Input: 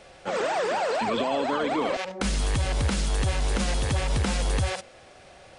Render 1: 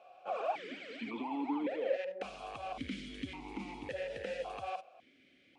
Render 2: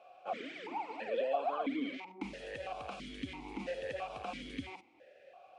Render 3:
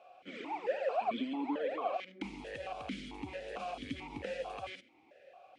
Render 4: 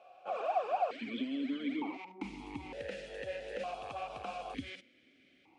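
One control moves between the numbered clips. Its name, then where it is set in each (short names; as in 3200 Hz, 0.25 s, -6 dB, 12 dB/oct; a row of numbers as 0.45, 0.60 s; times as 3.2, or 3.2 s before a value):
vowel sequencer, rate: 1.8, 3, 4.5, 1.1 Hz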